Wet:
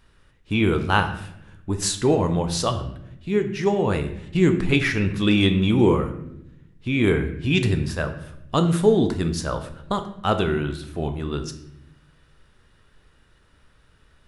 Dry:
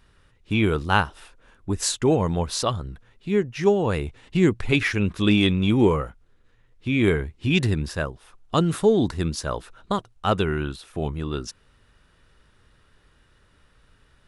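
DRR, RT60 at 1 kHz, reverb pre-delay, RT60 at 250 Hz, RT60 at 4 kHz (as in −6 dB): 7.0 dB, 0.70 s, 14 ms, 1.3 s, 0.60 s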